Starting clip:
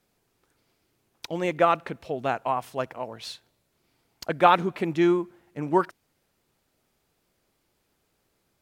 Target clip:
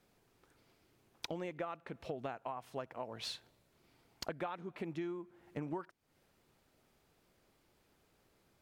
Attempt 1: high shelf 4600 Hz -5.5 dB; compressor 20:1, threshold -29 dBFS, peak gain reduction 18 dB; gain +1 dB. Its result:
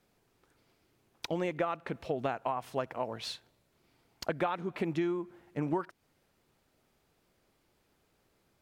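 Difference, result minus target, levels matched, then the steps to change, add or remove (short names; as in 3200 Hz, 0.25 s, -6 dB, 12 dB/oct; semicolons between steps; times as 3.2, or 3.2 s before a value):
compressor: peak gain reduction -9 dB
change: compressor 20:1, threshold -38.5 dBFS, peak gain reduction 27 dB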